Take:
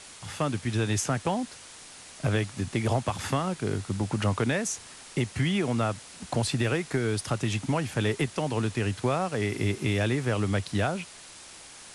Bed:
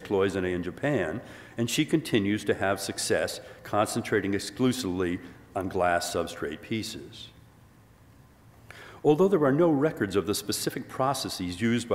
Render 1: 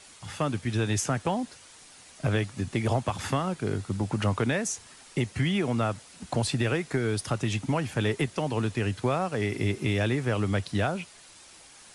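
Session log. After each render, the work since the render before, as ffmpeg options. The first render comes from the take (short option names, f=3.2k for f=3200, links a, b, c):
-af "afftdn=nr=6:nf=-47"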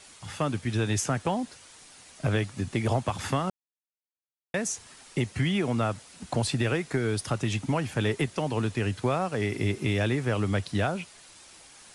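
-filter_complex "[0:a]asplit=3[a][b][c];[a]atrim=end=3.5,asetpts=PTS-STARTPTS,afade=t=out:st=3.496:d=0.004:c=hsin[d];[b]atrim=start=3.5:end=4.54,asetpts=PTS-STARTPTS,volume=0[e];[c]atrim=start=4.54,asetpts=PTS-STARTPTS,afade=t=in:d=0.004:c=hsin[f];[d][e][f]concat=n=3:v=0:a=1"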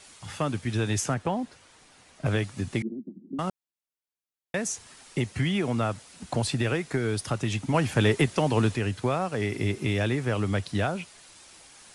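-filter_complex "[0:a]asettb=1/sr,asplit=3[a][b][c];[a]atrim=end=1.144[d];[b]atrim=start=1.14:end=2.26,asetpts=PTS-STARTPTS,afade=t=in:d=0.004:c=qsin,afade=t=out:st=1.116:d=0.004:c=qsin,highshelf=f=3.8k:g=-10[e];[c]atrim=start=2.256[f];[d][e]acrossfade=d=0.004:c1=hsin:c2=qsin[g];[g][f]acrossfade=d=0.004:c1=qsin:c2=hsin,asettb=1/sr,asplit=3[h][i][j];[h]atrim=end=2.824[k];[i]atrim=start=2.82:end=3.39,asetpts=PTS-STARTPTS,afade=t=in:d=0.004:c=qsin,afade=t=out:st=0.566:d=0.004:c=qsin,asuperpass=centerf=260:order=8:qfactor=1.5[l];[j]atrim=start=3.386[m];[k][l]acrossfade=d=0.004:c1=hsin:c2=qsin[n];[n][m]acrossfade=d=0.004:c1=qsin:c2=hsin,asettb=1/sr,asplit=3[o][p][q];[o]atrim=end=7.744[r];[p]atrim=start=7.74:end=8.77,asetpts=PTS-STARTPTS,afade=t=in:d=0.004:c=qsin,afade=t=out:st=1.026:d=0.004:c=qsin,acontrast=23[s];[q]atrim=start=8.766[t];[r][s]acrossfade=d=0.004:c1=hsin:c2=qsin[u];[u][t]acrossfade=d=0.004:c1=qsin:c2=hsin"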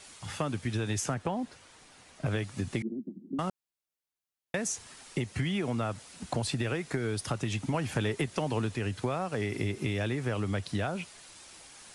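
-af "acompressor=threshold=-28dB:ratio=4"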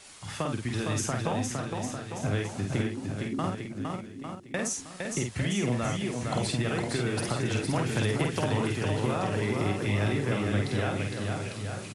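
-filter_complex "[0:a]asplit=2[a][b];[b]adelay=49,volume=-4dB[c];[a][c]amix=inputs=2:normalize=0,aecho=1:1:460|851|1183|1466|1706:0.631|0.398|0.251|0.158|0.1"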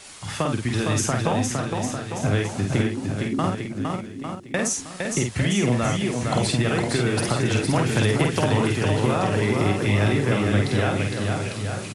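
-af "volume=7dB"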